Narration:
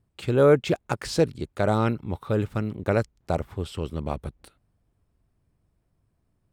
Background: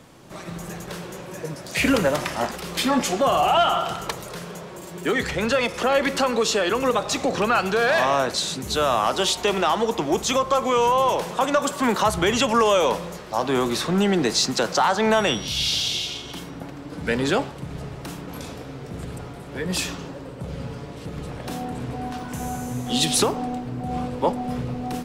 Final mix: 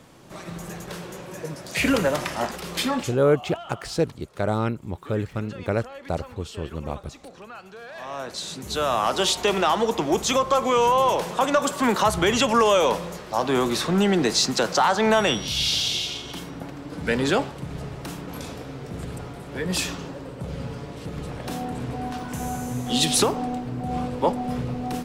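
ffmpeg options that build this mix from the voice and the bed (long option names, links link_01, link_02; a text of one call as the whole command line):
ffmpeg -i stem1.wav -i stem2.wav -filter_complex "[0:a]adelay=2800,volume=-1.5dB[link_01];[1:a]volume=19.5dB,afade=type=out:start_time=2.81:duration=0.37:silence=0.105925,afade=type=in:start_time=7.94:duration=1.3:silence=0.0891251[link_02];[link_01][link_02]amix=inputs=2:normalize=0" out.wav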